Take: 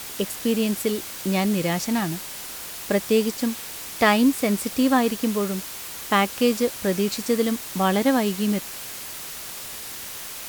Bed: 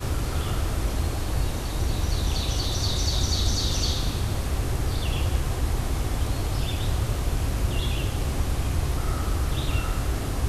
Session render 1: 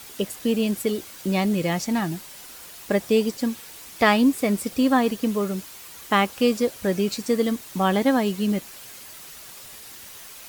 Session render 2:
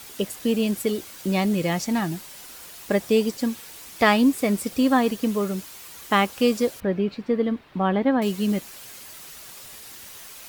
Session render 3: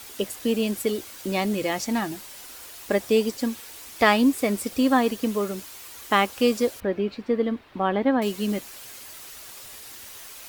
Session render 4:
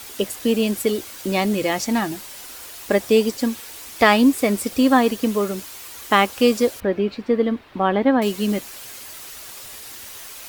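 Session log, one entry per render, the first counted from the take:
denoiser 8 dB, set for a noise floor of -36 dBFS
6.8–8.22 air absorption 400 m
bell 170 Hz -15 dB 0.28 oct
gain +4.5 dB; limiter -1 dBFS, peak gain reduction 1.5 dB

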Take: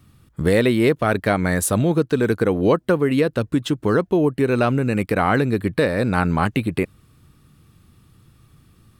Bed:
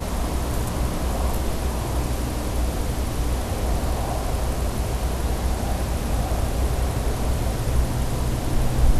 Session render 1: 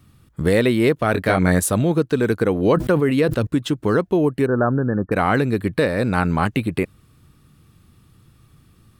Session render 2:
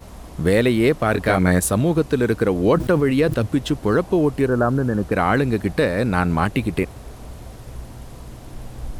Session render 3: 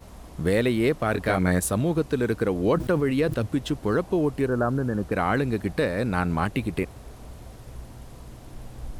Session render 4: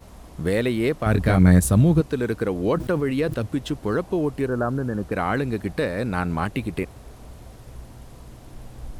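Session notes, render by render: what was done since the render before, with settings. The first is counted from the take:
1.12–1.6 doubler 22 ms -3 dB; 2.55–3.47 sustainer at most 58 dB/s; 4.46–5.12 brick-wall FIR low-pass 1800 Hz
add bed -13.5 dB
gain -5.5 dB
1.06–2.01 tone controls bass +12 dB, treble +2 dB

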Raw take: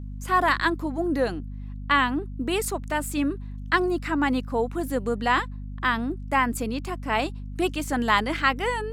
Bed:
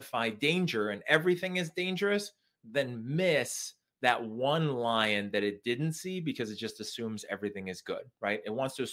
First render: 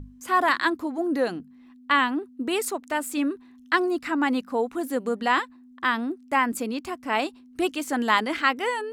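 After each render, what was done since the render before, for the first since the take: notches 50/100/150/200 Hz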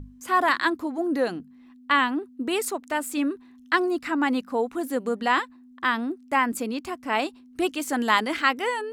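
7.8–8.61 high shelf 5500 Hz +4 dB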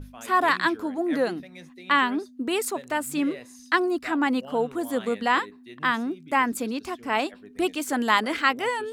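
add bed -13.5 dB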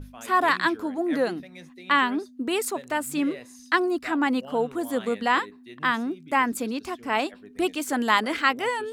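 nothing audible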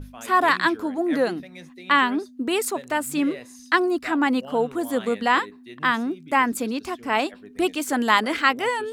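gain +2.5 dB

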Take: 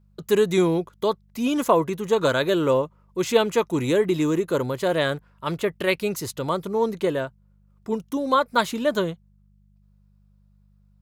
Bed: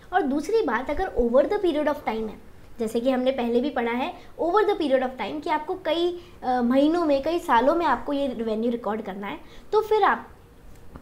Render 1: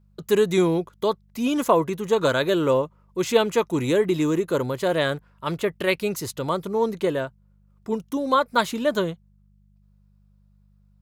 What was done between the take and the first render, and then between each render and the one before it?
nothing audible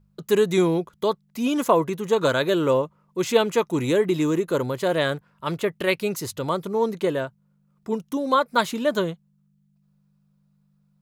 de-hum 50 Hz, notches 2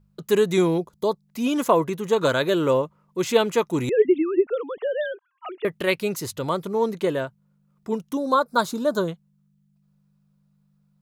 0.78–1.26 band shelf 2000 Hz -9 dB; 3.89–5.65 sine-wave speech; 8.17–9.08 band shelf 2400 Hz -14 dB 1 oct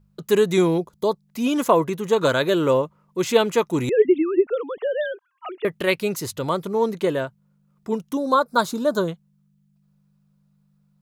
gain +1.5 dB

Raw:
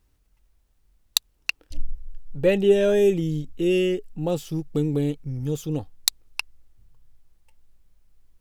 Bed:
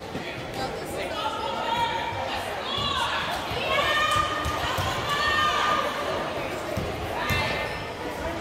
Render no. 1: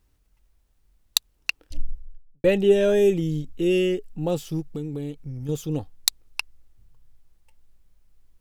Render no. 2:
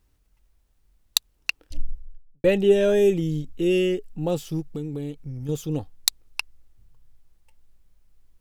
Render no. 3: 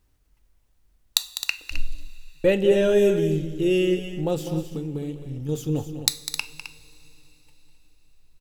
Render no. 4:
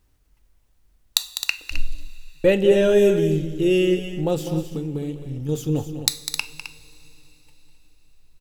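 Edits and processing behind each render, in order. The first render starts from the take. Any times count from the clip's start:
1.81–2.44 studio fade out; 4.61–5.49 compressor 2:1, threshold -33 dBFS
nothing audible
on a send: loudspeakers at several distances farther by 69 m -11 dB, 90 m -11 dB; on the sum: two-slope reverb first 0.37 s, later 4.2 s, from -18 dB, DRR 11 dB
gain +2.5 dB; limiter -1 dBFS, peak gain reduction 1.5 dB

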